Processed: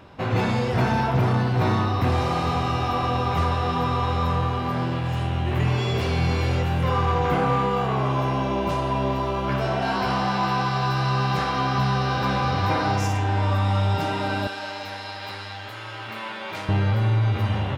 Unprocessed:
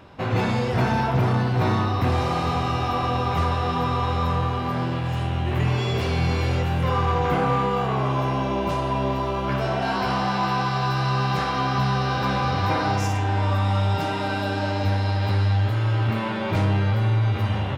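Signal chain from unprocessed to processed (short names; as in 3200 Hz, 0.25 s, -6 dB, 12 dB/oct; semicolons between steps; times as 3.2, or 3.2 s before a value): 14.47–16.69 HPF 1300 Hz 6 dB/oct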